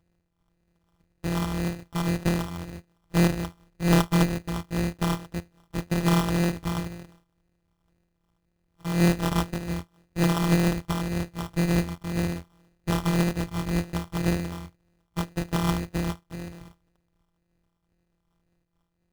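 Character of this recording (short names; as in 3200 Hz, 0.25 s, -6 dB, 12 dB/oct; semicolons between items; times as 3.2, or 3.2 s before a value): a buzz of ramps at a fixed pitch in blocks of 256 samples; phasing stages 4, 1.9 Hz, lowest notch 530–1100 Hz; aliases and images of a low sample rate 2200 Hz, jitter 0%; noise-modulated level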